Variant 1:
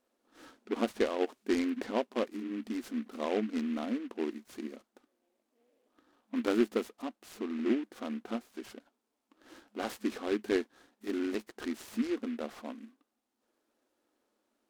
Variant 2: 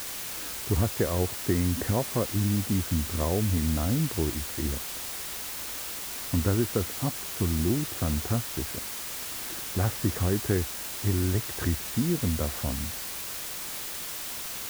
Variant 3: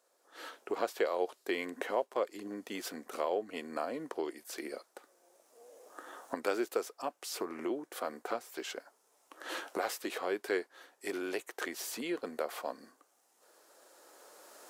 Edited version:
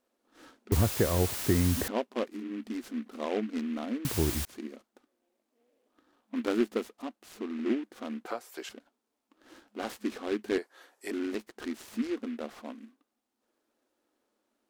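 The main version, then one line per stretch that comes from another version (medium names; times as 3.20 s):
1
0.72–1.88 s: from 2
4.05–4.45 s: from 2
8.26–8.69 s: from 3
10.58–11.11 s: from 3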